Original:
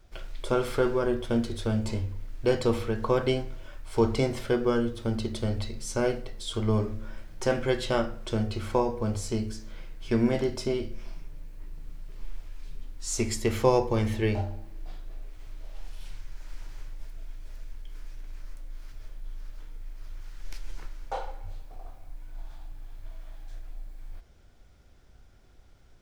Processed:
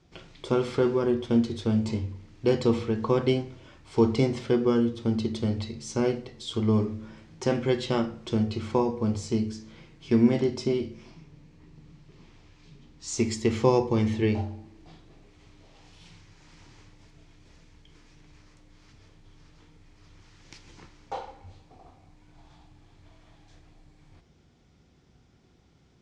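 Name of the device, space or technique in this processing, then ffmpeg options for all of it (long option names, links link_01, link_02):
car door speaker: -filter_complex "[0:a]highpass=83,equalizer=frequency=160:width_type=q:width=4:gain=6,equalizer=frequency=600:width_type=q:width=4:gain=-7,equalizer=frequency=1500:width_type=q:width=4:gain=-6,lowpass=frequency=7300:width=0.5412,lowpass=frequency=7300:width=1.3066,asettb=1/sr,asplit=3[link_01][link_02][link_03];[link_01]atrim=end=11.114[link_04];[link_02]atrim=start=11.11:end=13.08,asetpts=PTS-STARTPTS,afade=type=in:duration=0.004:curve=qsin,afade=type=out:start_time=1.966:duration=0.004:curve=qsin,lowpass=7800[link_05];[link_03]atrim=start=13.076[link_06];[link_04][link_05]acrossfade=duration=0.004:curve1=hsin:curve2=qsin[link_07];[link_07][link_06]acrossfade=duration=0.004:curve1=qsin:curve2=hsin,equalizer=frequency=250:width=0.88:gain=4.5"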